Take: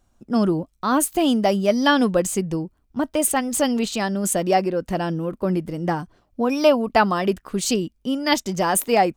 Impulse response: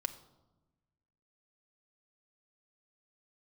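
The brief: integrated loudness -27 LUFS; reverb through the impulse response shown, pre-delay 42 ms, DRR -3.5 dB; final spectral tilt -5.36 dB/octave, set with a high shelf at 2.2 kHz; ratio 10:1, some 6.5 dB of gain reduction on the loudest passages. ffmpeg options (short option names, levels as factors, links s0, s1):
-filter_complex "[0:a]highshelf=f=2200:g=-9,acompressor=threshold=0.112:ratio=10,asplit=2[s0][s1];[1:a]atrim=start_sample=2205,adelay=42[s2];[s1][s2]afir=irnorm=-1:irlink=0,volume=1.41[s3];[s0][s3]amix=inputs=2:normalize=0,volume=0.501"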